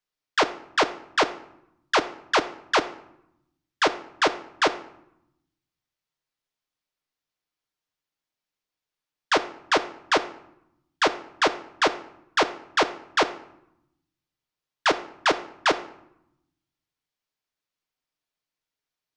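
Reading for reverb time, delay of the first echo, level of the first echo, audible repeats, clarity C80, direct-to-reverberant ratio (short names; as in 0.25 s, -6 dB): 0.80 s, none, none, none, 17.5 dB, 7.5 dB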